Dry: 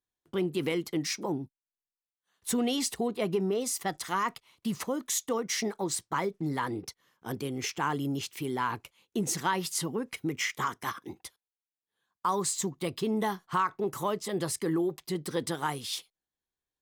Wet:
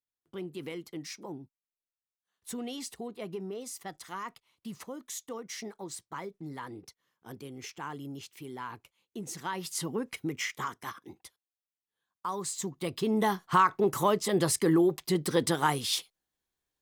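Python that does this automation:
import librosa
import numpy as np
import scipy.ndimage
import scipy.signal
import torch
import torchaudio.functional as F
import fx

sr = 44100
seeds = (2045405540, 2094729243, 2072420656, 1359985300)

y = fx.gain(x, sr, db=fx.line((9.3, -9.5), (9.98, 0.0), (10.96, -6.0), (12.39, -6.0), (13.46, 5.0)))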